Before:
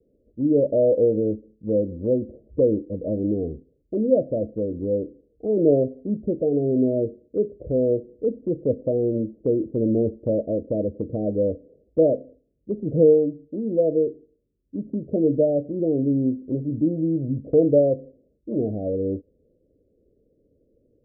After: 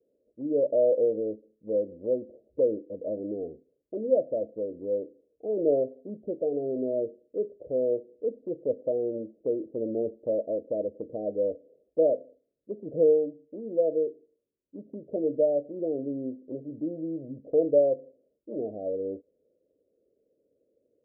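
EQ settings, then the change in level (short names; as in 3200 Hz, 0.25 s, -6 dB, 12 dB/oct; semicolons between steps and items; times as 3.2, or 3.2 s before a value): band-pass 650 Hz, Q 1.4; -2.5 dB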